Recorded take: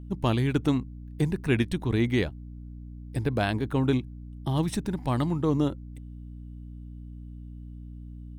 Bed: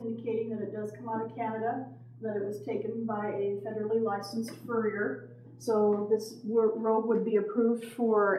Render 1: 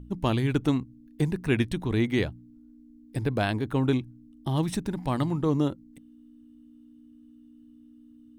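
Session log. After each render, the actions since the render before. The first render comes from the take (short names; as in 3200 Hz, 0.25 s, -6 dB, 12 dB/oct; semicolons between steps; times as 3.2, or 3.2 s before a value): de-hum 60 Hz, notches 3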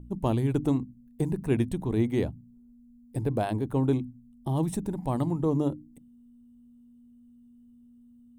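band shelf 2700 Hz -10.5 dB 2.5 oct; notches 50/100/150/200/250/300 Hz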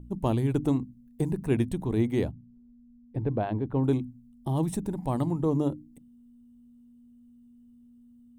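2.31–3.84 air absorption 350 m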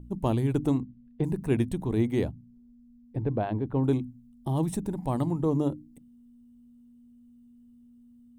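0.8–1.24 LPF 3700 Hz 24 dB/oct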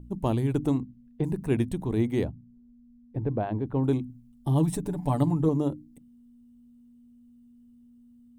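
2.23–3.59 high shelf 2600 Hz -> 4600 Hz -11 dB; 4.09–5.49 comb 6.9 ms, depth 78%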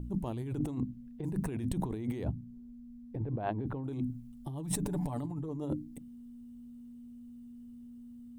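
limiter -19.5 dBFS, peak gain reduction 9.5 dB; negative-ratio compressor -35 dBFS, ratio -1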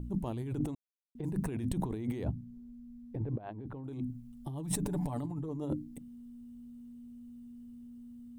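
0.75–1.15 mute; 3.38–4.39 fade in linear, from -12.5 dB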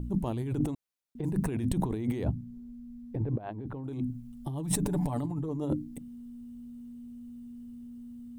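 gain +4.5 dB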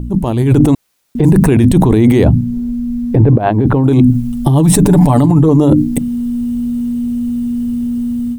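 AGC gain up to 14.5 dB; maximiser +13.5 dB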